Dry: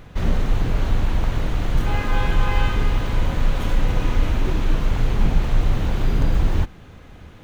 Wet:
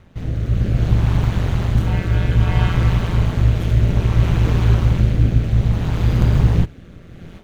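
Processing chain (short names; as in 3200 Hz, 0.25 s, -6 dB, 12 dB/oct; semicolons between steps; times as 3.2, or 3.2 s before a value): rotary speaker horn 0.6 Hz; AGC gain up to 14.5 dB; ring modulator 87 Hz; gain -1 dB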